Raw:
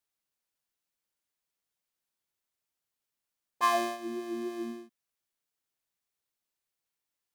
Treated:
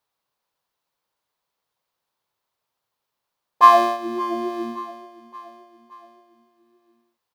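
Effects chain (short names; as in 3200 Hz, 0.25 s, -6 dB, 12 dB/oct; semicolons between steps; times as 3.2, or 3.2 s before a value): graphic EQ 125/500/1000/4000/8000 Hz +7/+7/+12/+5/-4 dB; feedback echo 0.572 s, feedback 52%, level -18 dB; gain +3.5 dB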